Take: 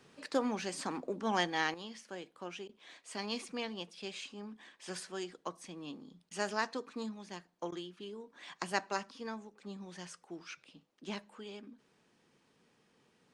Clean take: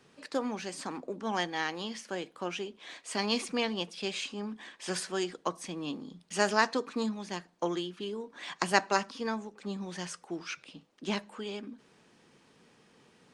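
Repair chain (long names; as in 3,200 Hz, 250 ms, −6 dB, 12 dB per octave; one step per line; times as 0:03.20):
repair the gap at 0:02.68/0:06.30/0:07.71, 10 ms
level correction +8.5 dB, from 0:01.74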